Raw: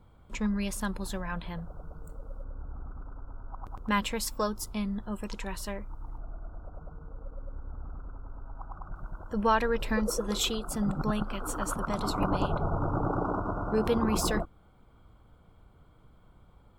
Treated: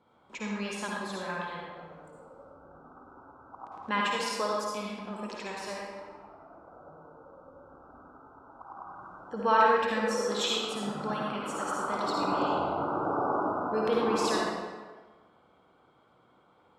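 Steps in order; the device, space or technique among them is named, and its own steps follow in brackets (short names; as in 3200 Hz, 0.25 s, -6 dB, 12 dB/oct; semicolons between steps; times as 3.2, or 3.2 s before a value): supermarket ceiling speaker (BPF 280–6100 Hz; reverb RT60 1.3 s, pre-delay 49 ms, DRR -3.5 dB); gain -2 dB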